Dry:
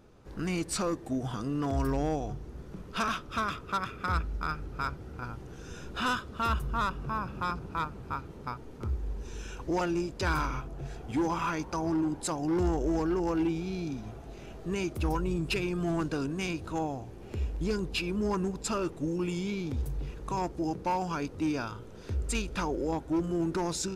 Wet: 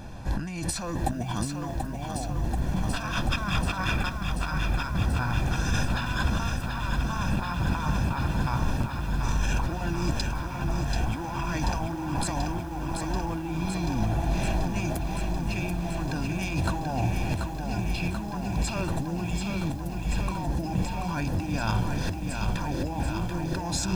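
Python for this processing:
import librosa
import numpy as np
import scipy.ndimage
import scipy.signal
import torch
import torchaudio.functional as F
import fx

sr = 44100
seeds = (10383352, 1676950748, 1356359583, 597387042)

y = x + 0.76 * np.pad(x, (int(1.2 * sr / 1000.0), 0))[:len(x)]
y = fx.over_compress(y, sr, threshold_db=-39.0, ratio=-1.0)
y = fx.echo_crushed(y, sr, ms=735, feedback_pct=80, bits=10, wet_db=-5.5)
y = F.gain(torch.from_numpy(y), 8.0).numpy()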